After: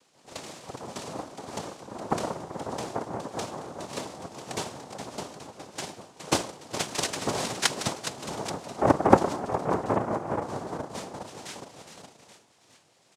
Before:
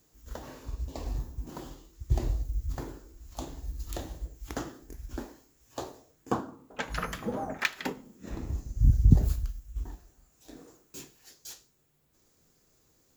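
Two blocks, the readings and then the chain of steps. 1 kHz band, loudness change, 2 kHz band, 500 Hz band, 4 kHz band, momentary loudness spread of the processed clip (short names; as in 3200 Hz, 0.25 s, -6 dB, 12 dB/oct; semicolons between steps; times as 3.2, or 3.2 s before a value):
+12.0 dB, +2.5 dB, +3.0 dB, +12.5 dB, +11.0 dB, 15 LU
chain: minimum comb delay 0.91 ms; frequency-shifting echo 0.415 s, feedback 57%, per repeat -120 Hz, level -9 dB; noise vocoder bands 2; gain +6 dB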